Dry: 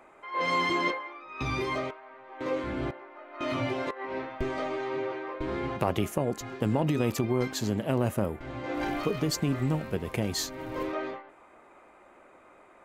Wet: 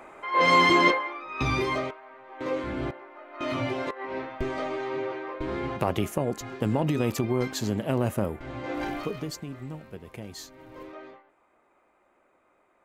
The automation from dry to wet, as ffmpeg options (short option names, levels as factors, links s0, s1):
-af "volume=2.51,afade=t=out:st=0.98:d=0.96:silence=0.446684,afade=t=out:st=8.68:d=0.78:silence=0.266073"